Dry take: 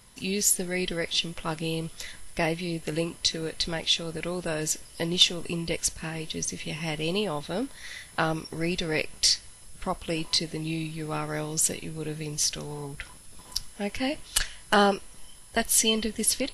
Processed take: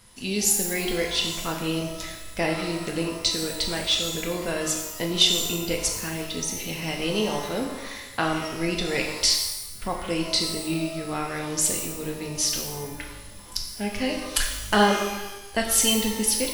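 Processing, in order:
tape wow and flutter 18 cents
reverb with rising layers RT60 1 s, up +12 semitones, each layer −8 dB, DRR 1.5 dB

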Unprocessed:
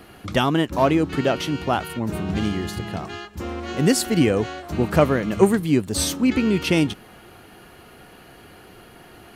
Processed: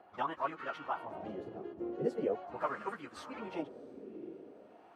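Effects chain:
time stretch by phase vocoder 0.53×
feedback delay with all-pass diffusion 684 ms, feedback 46%, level −15.5 dB
LFO wah 0.42 Hz 380–1,300 Hz, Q 2.8
level −3 dB

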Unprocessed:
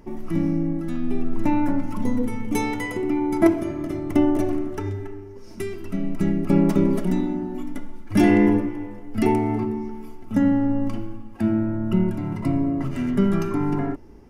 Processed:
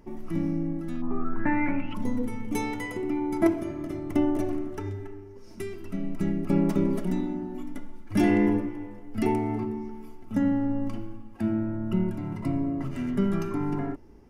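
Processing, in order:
0:01.01–0:01.93: low-pass with resonance 980 Hz → 3,000 Hz, resonance Q 12
level −5.5 dB

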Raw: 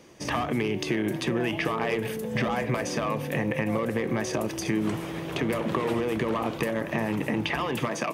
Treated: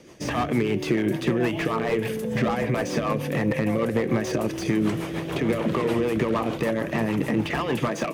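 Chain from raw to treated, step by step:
rotating-speaker cabinet horn 6.7 Hz
slew-rate limiting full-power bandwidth 51 Hz
level +5.5 dB

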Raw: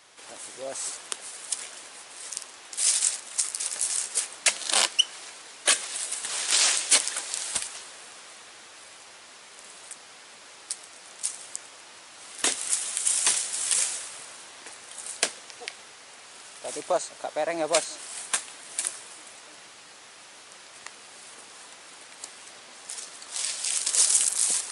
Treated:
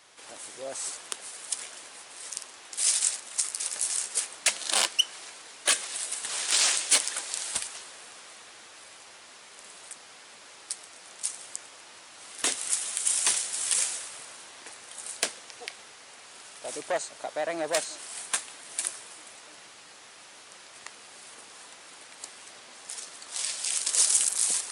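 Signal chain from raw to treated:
saturating transformer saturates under 3,700 Hz
level −1.5 dB

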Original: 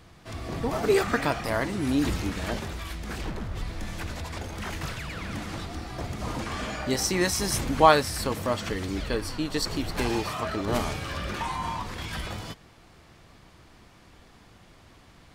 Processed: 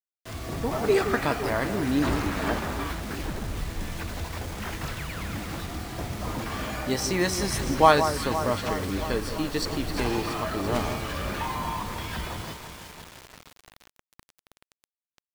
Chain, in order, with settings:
high-shelf EQ 6,800 Hz −6 dB
delay that swaps between a low-pass and a high-pass 170 ms, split 1,500 Hz, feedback 81%, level −9 dB
bit reduction 7 bits
0:02.02–0:03.00: parametric band 1,100 Hz +7 dB 1.4 octaves

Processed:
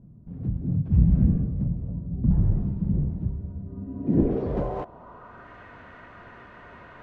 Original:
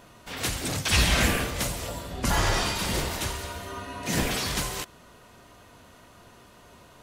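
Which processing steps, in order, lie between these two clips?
low-pass filter sweep 170 Hz → 1,800 Hz, 0:03.66–0:05.56
level +4 dB

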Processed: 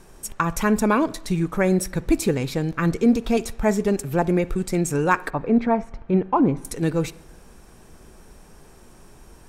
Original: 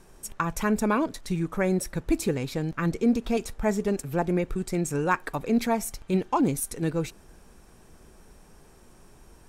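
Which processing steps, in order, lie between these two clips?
0:05.30–0:06.65: low-pass filter 1,600 Hz 12 dB per octave
on a send: convolution reverb RT60 0.80 s, pre-delay 47 ms, DRR 20 dB
on the sum: level +5 dB

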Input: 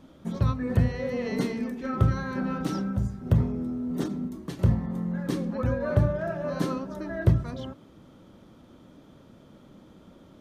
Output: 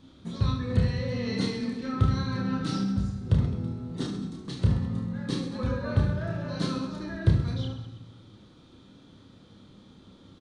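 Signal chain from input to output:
graphic EQ with 15 bands 100 Hz +5 dB, 630 Hz −6 dB, 4,000 Hz +11 dB
reverse bouncing-ball delay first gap 30 ms, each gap 1.4×, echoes 5
on a send at −9.5 dB: convolution reverb RT60 1.2 s, pre-delay 3 ms
on the sum: downsampling to 22,050 Hz
level −4 dB

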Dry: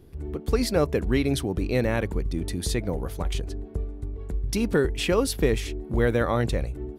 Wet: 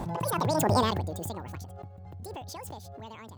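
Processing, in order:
source passing by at 0:01.53, 35 m/s, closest 12 metres
change of speed 2.07×
background raised ahead of every attack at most 21 dB per second

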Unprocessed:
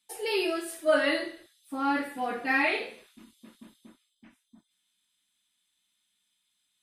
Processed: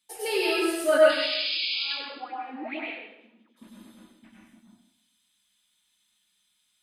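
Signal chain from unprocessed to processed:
0:00.97–0:03.56: LFO wah 1.1 Hz → 3.9 Hz 220–3,000 Hz, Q 7.5
0:01.09–0:01.84: sound drawn into the spectrogram noise 2,200–5,100 Hz −34 dBFS
convolution reverb RT60 0.85 s, pre-delay 88 ms, DRR −3.5 dB

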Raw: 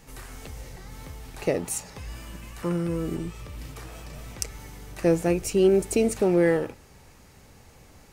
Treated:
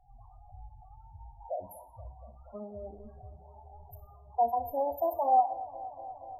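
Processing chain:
gliding playback speed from 89% → 165%
drawn EQ curve 100 Hz 0 dB, 150 Hz −9 dB, 500 Hz −8 dB, 770 Hz +9 dB, 6,500 Hz −29 dB, 13,000 Hz +5 dB
spectral peaks only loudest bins 8
flanger 0.35 Hz, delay 8.9 ms, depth 1.1 ms, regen +77%
delay with a band-pass on its return 238 ms, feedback 81%, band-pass 580 Hz, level −17 dB
convolution reverb RT60 0.45 s, pre-delay 6 ms, DRR 8.5 dB
level −3.5 dB

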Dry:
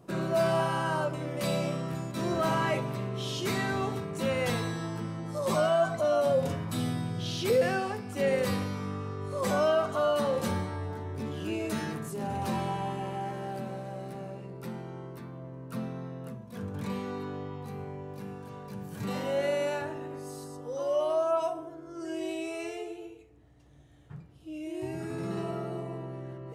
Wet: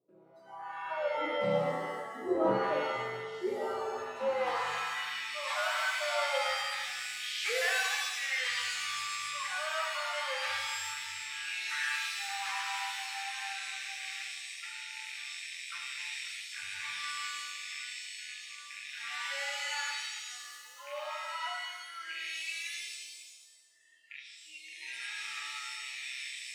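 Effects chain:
loose part that buzzes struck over −42 dBFS, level −36 dBFS
band-pass filter sweep 440 Hz → 2,000 Hz, 0:03.67–0:05.29
on a send: tape delay 229 ms, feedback 88%, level −23 dB, low-pass 2,700 Hz
on the sum: sample-and-hold tremolo
in parallel at +2 dB: downward compressor 6 to 1, threshold −53 dBFS, peak gain reduction 19 dB
on the sum: noise reduction from a noise print of the clip's start 27 dB
reverb with rising layers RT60 1.1 s, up +7 semitones, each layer −2 dB, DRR 1 dB
level +5 dB

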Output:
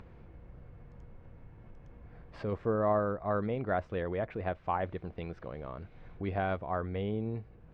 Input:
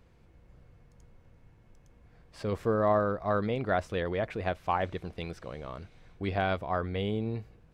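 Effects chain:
Bessel low-pass filter 1,800 Hz, order 2
in parallel at −1 dB: upward compression, threshold −30 dBFS
on the sum: level −8 dB

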